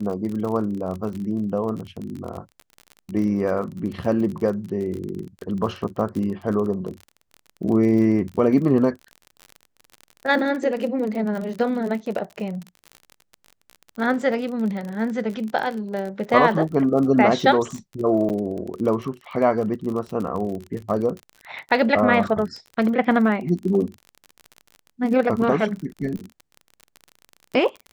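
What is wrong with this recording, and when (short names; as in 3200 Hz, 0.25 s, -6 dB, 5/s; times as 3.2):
crackle 39/s -29 dBFS
18.29–18.3 gap 8.9 ms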